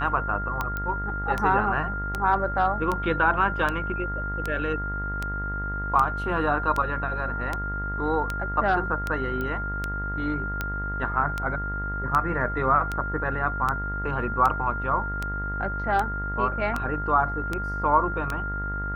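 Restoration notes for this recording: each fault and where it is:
mains buzz 50 Hz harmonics 40 −32 dBFS
scratch tick 78 rpm −13 dBFS
whistle 1,400 Hz −30 dBFS
0:00.77: click −17 dBFS
0:09.41: click −19 dBFS

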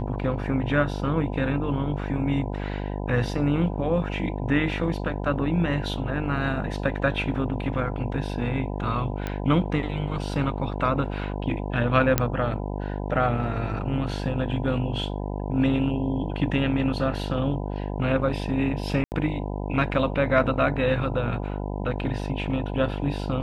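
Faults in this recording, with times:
mains buzz 50 Hz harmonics 20 −30 dBFS
0:09.27: click −16 dBFS
0:12.18: click −4 dBFS
0:19.04–0:19.12: drop-out 79 ms

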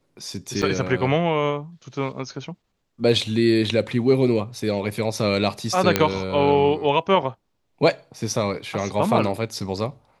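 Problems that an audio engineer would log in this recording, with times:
0:00.62–0:00.63: drop-out 6 ms
0:05.96: click −2 dBFS

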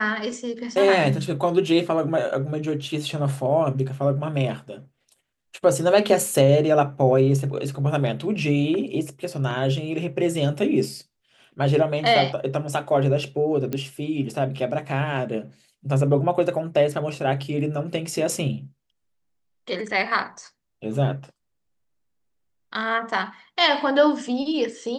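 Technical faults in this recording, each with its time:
0:13.73: click −14 dBFS

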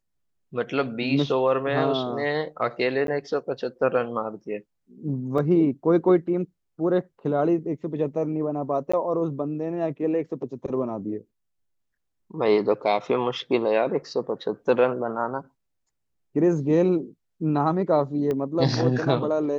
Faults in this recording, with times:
0:03.07–0:03.08: drop-out 12 ms
0:05.38: drop-out 3.7 ms
0:08.92–0:08.94: drop-out 15 ms
0:18.31: click −17 dBFS

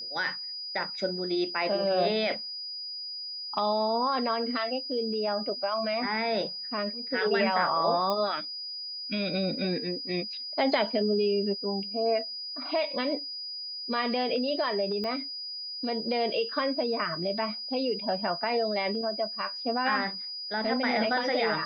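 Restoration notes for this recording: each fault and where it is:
whistle 4,900 Hz −35 dBFS
0:08.10: click −17 dBFS
0:15.04: click −23 dBFS

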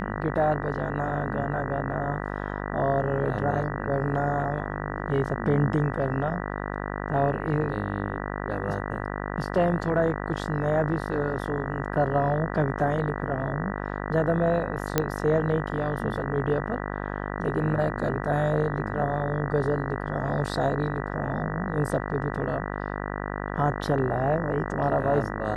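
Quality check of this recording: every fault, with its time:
mains buzz 50 Hz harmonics 39 −32 dBFS
0:14.98: click −6 dBFS

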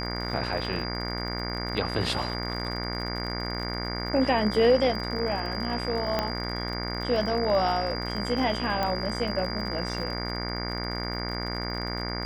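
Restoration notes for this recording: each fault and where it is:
mains buzz 60 Hz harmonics 38 −33 dBFS
surface crackle 51 per second −35 dBFS
whistle 4,800 Hz −35 dBFS
0:06.19: click −12 dBFS
0:08.83: click −15 dBFS

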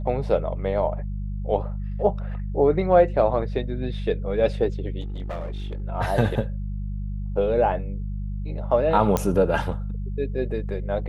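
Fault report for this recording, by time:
mains hum 50 Hz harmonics 4 −29 dBFS
0:05.00–0:05.82: clipping −27 dBFS
0:09.17: click −9 dBFS

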